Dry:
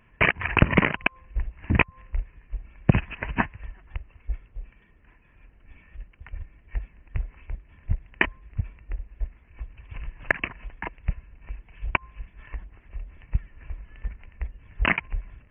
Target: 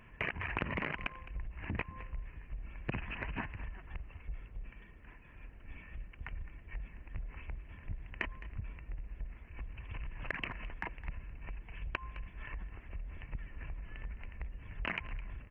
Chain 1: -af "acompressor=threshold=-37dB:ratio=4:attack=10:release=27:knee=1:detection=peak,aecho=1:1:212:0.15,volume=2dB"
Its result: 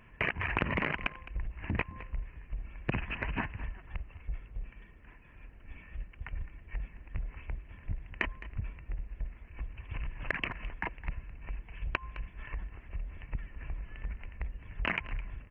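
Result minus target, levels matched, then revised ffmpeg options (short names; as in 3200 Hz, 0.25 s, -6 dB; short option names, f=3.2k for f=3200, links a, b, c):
compressor: peak gain reduction -5.5 dB
-af "acompressor=threshold=-44dB:ratio=4:attack=10:release=27:knee=1:detection=peak,aecho=1:1:212:0.15,volume=2dB"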